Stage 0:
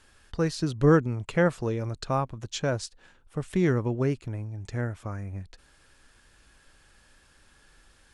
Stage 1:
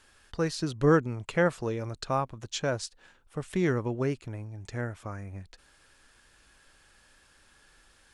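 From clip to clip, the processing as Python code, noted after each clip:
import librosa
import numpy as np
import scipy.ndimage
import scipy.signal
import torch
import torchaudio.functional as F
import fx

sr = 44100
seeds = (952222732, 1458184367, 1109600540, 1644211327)

y = fx.low_shelf(x, sr, hz=300.0, db=-5.5)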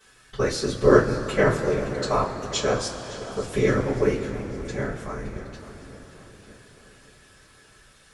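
y = fx.echo_feedback(x, sr, ms=565, feedback_pct=54, wet_db=-16.5)
y = fx.whisperise(y, sr, seeds[0])
y = fx.rev_double_slope(y, sr, seeds[1], early_s=0.21, late_s=4.9, knee_db=-22, drr_db=-10.0)
y = F.gain(torch.from_numpy(y), -4.0).numpy()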